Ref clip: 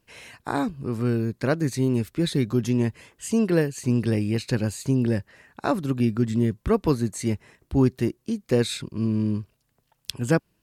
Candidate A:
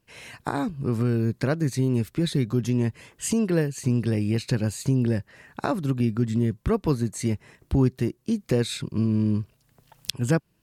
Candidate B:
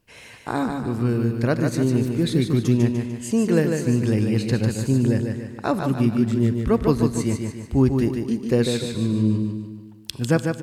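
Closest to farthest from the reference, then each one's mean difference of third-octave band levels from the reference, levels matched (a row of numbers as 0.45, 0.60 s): A, B; 1.5, 5.5 dB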